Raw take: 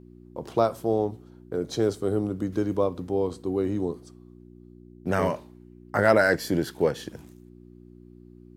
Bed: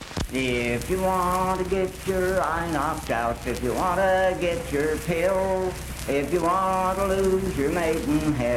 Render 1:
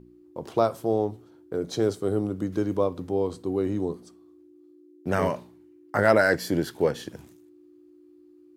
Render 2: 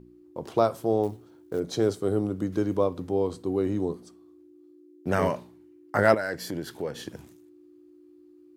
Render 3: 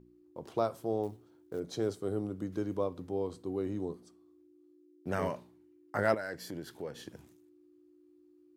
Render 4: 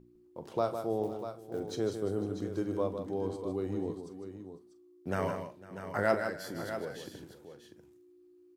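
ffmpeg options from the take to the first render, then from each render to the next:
-af "bandreject=f=60:t=h:w=4,bandreject=f=120:t=h:w=4,bandreject=f=180:t=h:w=4,bandreject=f=240:t=h:w=4"
-filter_complex "[0:a]asettb=1/sr,asplit=3[a][b][c];[a]atrim=end=1.034[d];[b]atrim=start=1.03:end=1.6,asetpts=PTS-STARTPTS,afade=t=in:d=0.004:c=qsin,afade=t=out:st=0.566:d=0.004:c=qsin,acrusher=bits=7:mode=log:mix=0:aa=0.000001[e];[c]atrim=start=1.596[f];[d][e]acrossfade=d=0.004:c1=hsin:c2=qsin[g];[g][f]acrossfade=d=0.004:c1=qsin:c2=hsin,asettb=1/sr,asplit=3[h][i][j];[h]atrim=end=6.144[k];[i]atrim=start=6.14:end=7.08,asetpts=PTS-STARTPTS,afade=t=in:d=0.004:c=qsin,afade=t=out:st=0.936:d=0.004:c=qsin,acompressor=threshold=-34dB:ratio=2:attack=3.2:release=140:knee=1:detection=peak[l];[j]atrim=start=7.076[m];[k][l]acrossfade=d=0.004:c1=hsin:c2=qsin[n];[n][m]acrossfade=d=0.004:c1=qsin:c2=hsin"
-af "volume=-8.5dB"
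-filter_complex "[0:a]asplit=2[a][b];[b]adelay=42,volume=-13dB[c];[a][c]amix=inputs=2:normalize=0,aecho=1:1:155|502|644:0.398|0.106|0.299"

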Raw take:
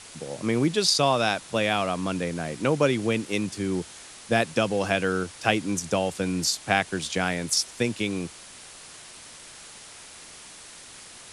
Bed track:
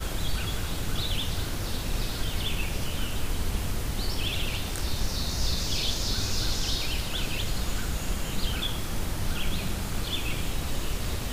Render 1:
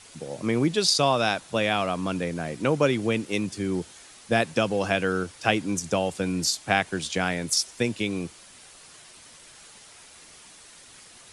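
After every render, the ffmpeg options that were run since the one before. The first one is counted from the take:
-af "afftdn=nr=6:nf=-46"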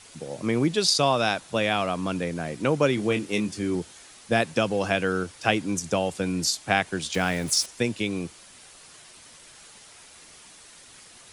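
-filter_complex "[0:a]asettb=1/sr,asplit=3[a][b][c];[a]atrim=end=2.954[d];[b]atrim=start=2.95:end=3.75,asetpts=PTS-STARTPTS,afade=t=in:d=0.004:c=qsin,afade=t=out:st=0.796:d=0.004:c=qsin,asplit=2[e][f];[f]adelay=24,volume=-7.5dB[g];[e][g]amix=inputs=2:normalize=0,atrim=end_sample=35280[h];[c]atrim=start=3.746[i];[d][h]acrossfade=d=0.004:c1=hsin:c2=qsin[j];[j][i]acrossfade=d=0.004:c1=qsin:c2=hsin,asettb=1/sr,asplit=3[k][l][m];[k]atrim=end=7.144[n];[l]atrim=start=7.14:end=7.66,asetpts=PTS-STARTPTS,afade=t=in:d=0.004:c=qsin,afade=t=out:st=0.516:d=0.004:c=qsin,aeval=exprs='val(0)+0.5*0.0188*sgn(val(0))':c=same[o];[m]atrim=start=7.656[p];[n][o]acrossfade=d=0.004:c1=hsin:c2=qsin[q];[q][p]acrossfade=d=0.004:c1=qsin:c2=hsin"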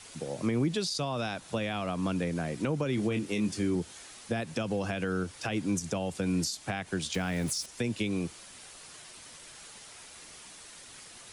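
-filter_complex "[0:a]alimiter=limit=-16dB:level=0:latency=1:release=82,acrossover=split=260[a][b];[b]acompressor=threshold=-33dB:ratio=3[c];[a][c]amix=inputs=2:normalize=0"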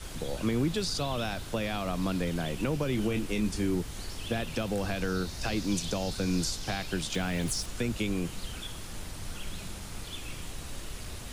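-filter_complex "[1:a]volume=-10.5dB[a];[0:a][a]amix=inputs=2:normalize=0"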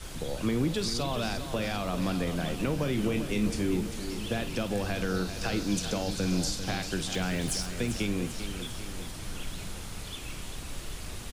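-filter_complex "[0:a]asplit=2[a][b];[b]adelay=49,volume=-13.5dB[c];[a][c]amix=inputs=2:normalize=0,aecho=1:1:395|790|1185|1580|1975|2370|2765:0.316|0.183|0.106|0.0617|0.0358|0.0208|0.012"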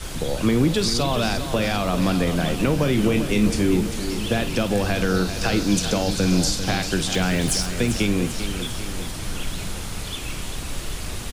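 -af "volume=9dB"

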